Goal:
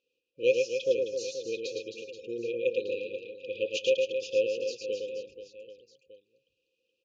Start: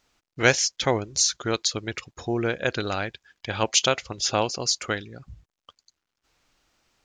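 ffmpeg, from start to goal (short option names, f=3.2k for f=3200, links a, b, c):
-filter_complex "[0:a]asplit=3[a][b][c];[a]bandpass=f=530:t=q:w=8,volume=0dB[d];[b]bandpass=f=1.84k:t=q:w=8,volume=-6dB[e];[c]bandpass=f=2.48k:t=q:w=8,volume=-9dB[f];[d][e][f]amix=inputs=3:normalize=0,aecho=1:1:110|264|479.6|781.4|1204:0.631|0.398|0.251|0.158|0.1,afftfilt=real='re*(1-between(b*sr/4096,540,2400))':imag='im*(1-between(b*sr/4096,540,2400))':win_size=4096:overlap=0.75,volume=3.5dB"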